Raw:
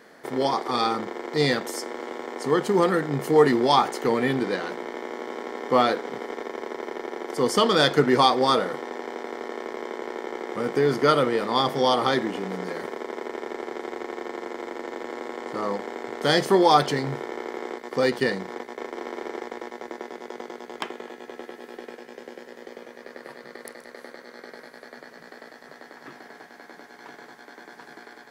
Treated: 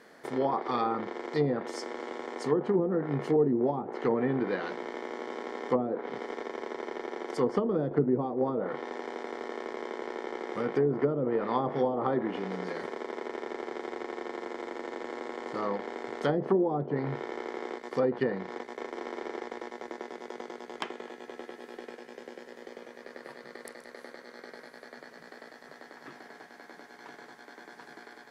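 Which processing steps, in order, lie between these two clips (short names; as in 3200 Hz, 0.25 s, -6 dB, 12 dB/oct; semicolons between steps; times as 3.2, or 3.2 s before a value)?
treble ducked by the level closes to 390 Hz, closed at -15.5 dBFS; gain -4 dB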